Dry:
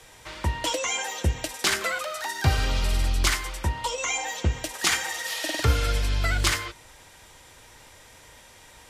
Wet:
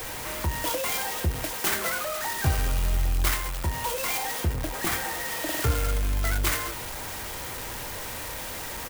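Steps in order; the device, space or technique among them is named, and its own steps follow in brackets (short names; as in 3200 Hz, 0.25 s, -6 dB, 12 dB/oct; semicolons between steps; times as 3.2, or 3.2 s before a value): 4.53–5.49 tilt -2.5 dB/oct; doubler 24 ms -10 dB; early CD player with a faulty converter (zero-crossing step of -25 dBFS; clock jitter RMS 0.066 ms); gain -4.5 dB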